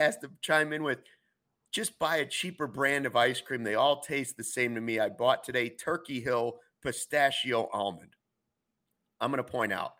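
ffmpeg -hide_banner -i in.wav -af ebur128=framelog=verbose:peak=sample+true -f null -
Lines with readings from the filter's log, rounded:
Integrated loudness:
  I:         -30.1 LUFS
  Threshold: -40.3 LUFS
Loudness range:
  LRA:         3.3 LU
  Threshold: -50.4 LUFS
  LRA low:   -32.4 LUFS
  LRA high:  -29.1 LUFS
Sample peak:
  Peak:      -10.8 dBFS
True peak:
  Peak:      -10.8 dBFS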